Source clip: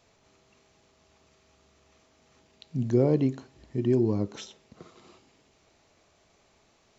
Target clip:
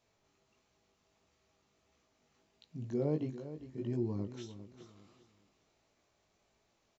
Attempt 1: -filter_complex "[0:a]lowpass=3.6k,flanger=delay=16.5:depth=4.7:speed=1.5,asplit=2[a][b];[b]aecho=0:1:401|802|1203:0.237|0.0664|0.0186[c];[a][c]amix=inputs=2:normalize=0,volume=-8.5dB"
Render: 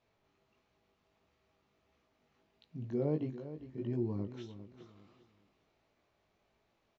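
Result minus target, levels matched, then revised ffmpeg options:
4000 Hz band -3.0 dB
-filter_complex "[0:a]flanger=delay=16.5:depth=4.7:speed=1.5,asplit=2[a][b];[b]aecho=0:1:401|802|1203:0.237|0.0664|0.0186[c];[a][c]amix=inputs=2:normalize=0,volume=-8.5dB"

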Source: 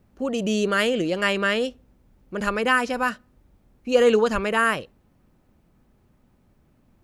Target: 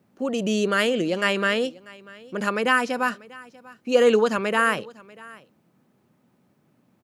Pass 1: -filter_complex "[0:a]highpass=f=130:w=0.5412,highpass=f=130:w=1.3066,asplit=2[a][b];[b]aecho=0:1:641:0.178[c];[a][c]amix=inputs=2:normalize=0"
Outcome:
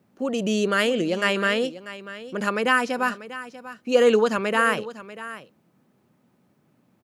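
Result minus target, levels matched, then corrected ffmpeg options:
echo-to-direct +7 dB
-filter_complex "[0:a]highpass=f=130:w=0.5412,highpass=f=130:w=1.3066,asplit=2[a][b];[b]aecho=0:1:641:0.0794[c];[a][c]amix=inputs=2:normalize=0"

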